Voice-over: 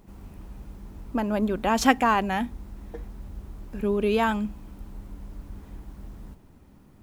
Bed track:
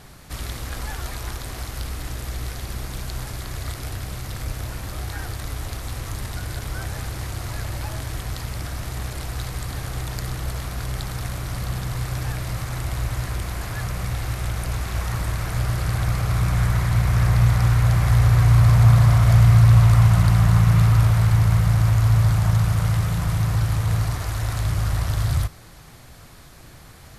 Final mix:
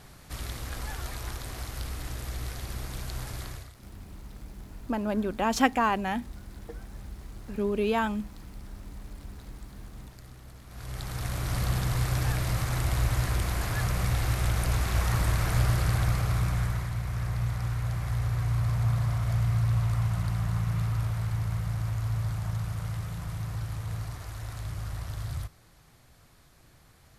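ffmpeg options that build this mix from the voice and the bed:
ffmpeg -i stem1.wav -i stem2.wav -filter_complex "[0:a]adelay=3750,volume=-3.5dB[link_01];[1:a]volume=14.5dB,afade=type=out:start_time=3.44:duration=0.26:silence=0.177828,afade=type=in:start_time=10.66:duration=0.92:silence=0.1,afade=type=out:start_time=15.53:duration=1.42:silence=0.237137[link_02];[link_01][link_02]amix=inputs=2:normalize=0" out.wav

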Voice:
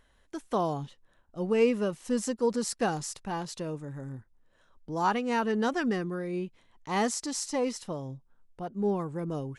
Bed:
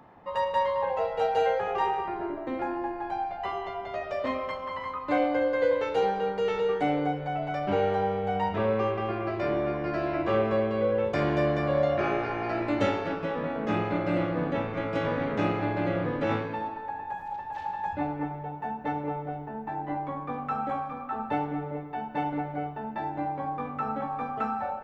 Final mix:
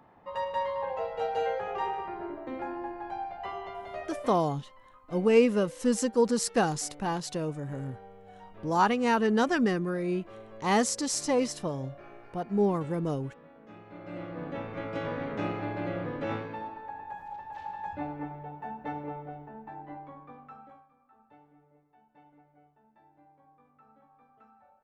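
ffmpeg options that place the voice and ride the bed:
ffmpeg -i stem1.wav -i stem2.wav -filter_complex "[0:a]adelay=3750,volume=3dB[link_01];[1:a]volume=12dB,afade=type=out:start_time=4.04:duration=0.43:silence=0.133352,afade=type=in:start_time=13.85:duration=0.96:silence=0.141254,afade=type=out:start_time=18.96:duration=1.92:silence=0.0630957[link_02];[link_01][link_02]amix=inputs=2:normalize=0" out.wav

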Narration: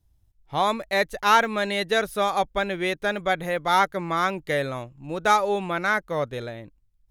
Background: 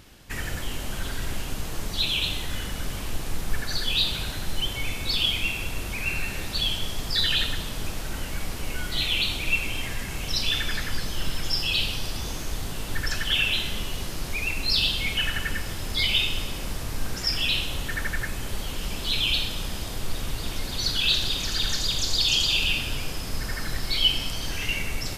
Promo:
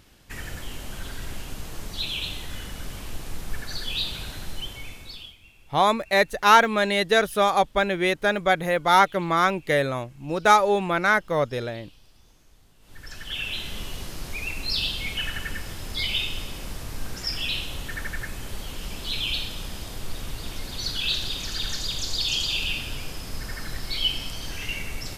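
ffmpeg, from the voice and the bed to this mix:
ffmpeg -i stem1.wav -i stem2.wav -filter_complex "[0:a]adelay=5200,volume=3dB[link_01];[1:a]volume=18.5dB,afade=type=out:start_time=4.43:duration=0.93:silence=0.0794328,afade=type=in:start_time=12.8:duration=1.03:silence=0.0707946[link_02];[link_01][link_02]amix=inputs=2:normalize=0" out.wav

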